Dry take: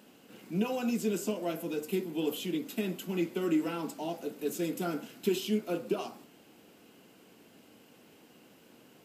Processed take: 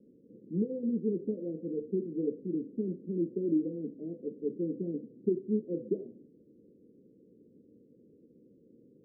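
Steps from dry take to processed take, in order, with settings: steep low-pass 510 Hz 72 dB/octave

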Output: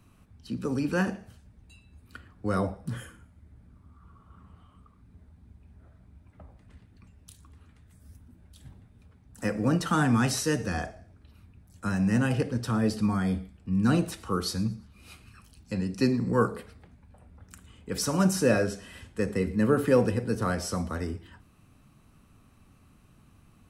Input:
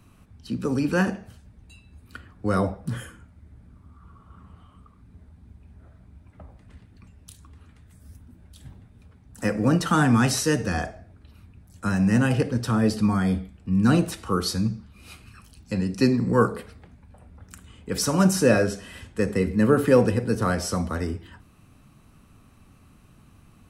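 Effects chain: feedback echo behind a high-pass 115 ms, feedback 36%, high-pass 4 kHz, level -21 dB; trim -4.5 dB

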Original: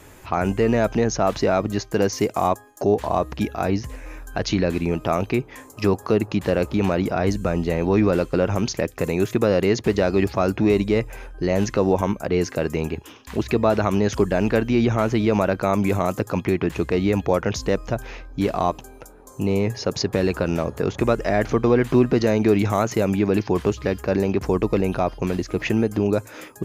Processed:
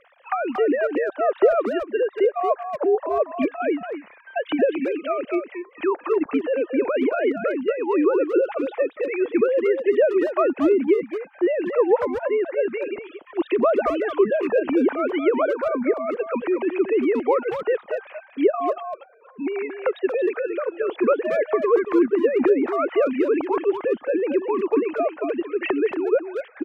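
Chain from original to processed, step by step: formants replaced by sine waves; low-pass that closes with the level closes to 1.5 kHz, closed at -13.5 dBFS; 15.42–16.10 s: rippled Chebyshev low-pass 2.3 kHz, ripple 3 dB; harmonic-percussive split percussive +6 dB; speakerphone echo 230 ms, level -7 dB; trim -3.5 dB

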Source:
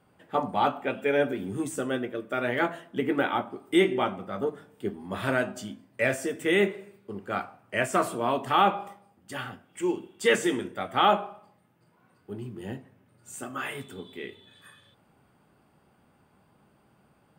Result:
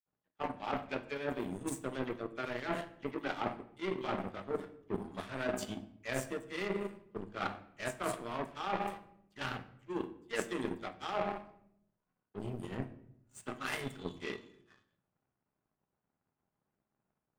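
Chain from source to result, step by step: de-hum 101.8 Hz, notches 7; phase dispersion lows, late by 61 ms, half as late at 2.9 kHz; reverse; compression 16:1, threshold -36 dBFS, peak gain reduction 21 dB; reverse; level-controlled noise filter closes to 1.6 kHz, open at -36 dBFS; power-law waveshaper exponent 2; on a send: reverberation RT60 0.75 s, pre-delay 3 ms, DRR 10 dB; on the sum: trim +10.5 dB

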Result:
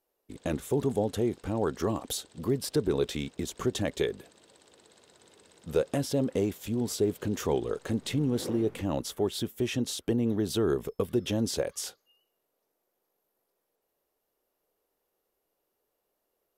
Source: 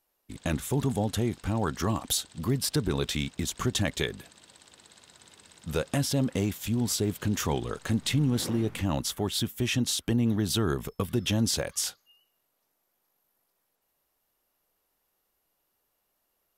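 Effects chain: peaking EQ 440 Hz +12 dB 1.3 oct; trim -6.5 dB

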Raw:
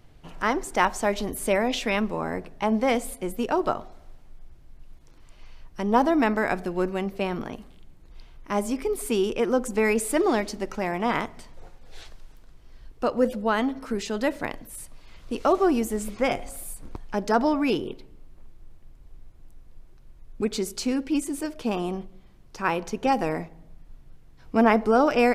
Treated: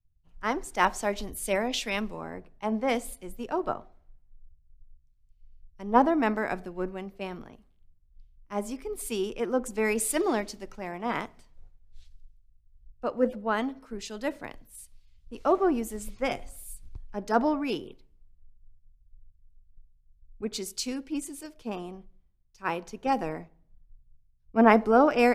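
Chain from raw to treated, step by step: three bands expanded up and down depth 100%; trim -6 dB

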